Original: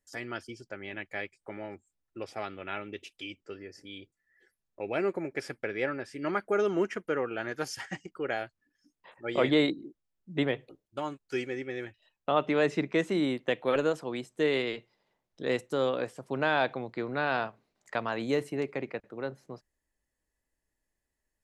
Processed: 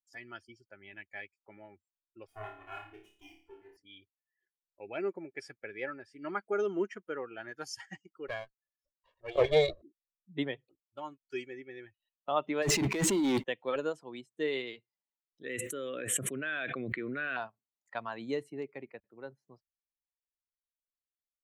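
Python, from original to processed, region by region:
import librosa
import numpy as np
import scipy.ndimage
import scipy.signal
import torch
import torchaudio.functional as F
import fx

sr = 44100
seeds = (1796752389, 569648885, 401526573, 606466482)

y = fx.chain(x, sr, fx.lower_of_two(delay_ms=2.8),
    fx.peak_eq(hz=4500.0, db=-12.0, octaves=1.1),
    fx.room_flutter(wall_m=4.8, rt60_s=0.66), at=(2.27, 3.77))
y = fx.chain(y, sr, fx.lower_of_two(delay_ms=1.8),
    fx.peak_eq(hz=410.0, db=7.0, octaves=1.1), at=(8.28, 9.82))
y = fx.chain(y, sr, fx.over_compress(threshold_db=-37.0, ratio=-1.0),
    fx.leveller(passes=5), at=(12.62, 13.44))
y = fx.chain(y, sr, fx.highpass(hz=220.0, slope=6),
    fx.fixed_phaser(hz=2100.0, stages=4),
    fx.env_flatten(amount_pct=100), at=(15.45, 17.37))
y = fx.bin_expand(y, sr, power=1.5)
y = fx.dynamic_eq(y, sr, hz=7600.0, q=1.1, threshold_db=-59.0, ratio=4.0, max_db=6)
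y = y * librosa.db_to_amplitude(-2.0)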